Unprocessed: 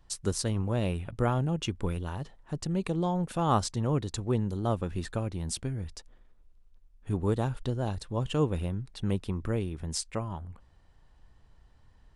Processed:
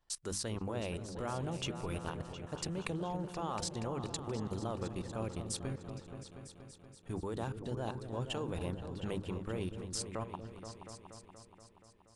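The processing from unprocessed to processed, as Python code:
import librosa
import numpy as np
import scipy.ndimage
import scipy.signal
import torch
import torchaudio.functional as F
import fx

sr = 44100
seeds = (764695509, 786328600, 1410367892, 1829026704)

y = fx.low_shelf(x, sr, hz=270.0, db=-9.0)
y = fx.hum_notches(y, sr, base_hz=50, count=6)
y = fx.level_steps(y, sr, step_db=20)
y = fx.echo_opening(y, sr, ms=238, hz=400, octaves=2, feedback_pct=70, wet_db=-6)
y = y * librosa.db_to_amplitude(2.0)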